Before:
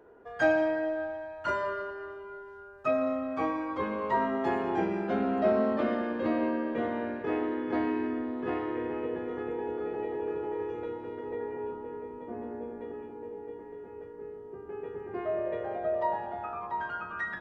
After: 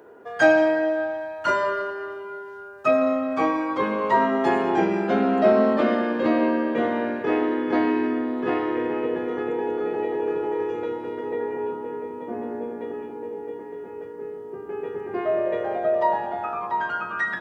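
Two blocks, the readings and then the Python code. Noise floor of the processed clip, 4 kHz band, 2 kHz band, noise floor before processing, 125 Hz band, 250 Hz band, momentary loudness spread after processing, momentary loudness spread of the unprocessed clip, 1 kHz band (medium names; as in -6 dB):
-38 dBFS, +10.5 dB, +9.0 dB, -46 dBFS, +5.5 dB, +7.5 dB, 15 LU, 15 LU, +8.5 dB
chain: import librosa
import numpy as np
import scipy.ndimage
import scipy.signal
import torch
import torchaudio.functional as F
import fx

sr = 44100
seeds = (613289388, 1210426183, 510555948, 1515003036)

y = scipy.signal.sosfilt(scipy.signal.butter(2, 140.0, 'highpass', fs=sr, output='sos'), x)
y = fx.high_shelf(y, sr, hz=4500.0, db=7.0)
y = y * 10.0 ** (8.0 / 20.0)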